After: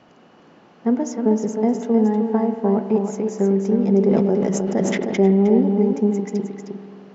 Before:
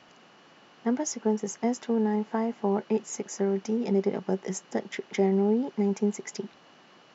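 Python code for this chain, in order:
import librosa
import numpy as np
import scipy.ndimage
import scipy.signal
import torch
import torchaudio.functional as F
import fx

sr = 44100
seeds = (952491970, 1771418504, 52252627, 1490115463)

p1 = fx.tilt_shelf(x, sr, db=6.5, hz=1100.0)
p2 = p1 + fx.echo_single(p1, sr, ms=311, db=-6.0, dry=0)
p3 = fx.rev_spring(p2, sr, rt60_s=3.0, pass_ms=(46,), chirp_ms=45, drr_db=9.0)
p4 = fx.sustainer(p3, sr, db_per_s=20.0, at=(4.01, 5.61))
y = p4 * 10.0 ** (2.0 / 20.0)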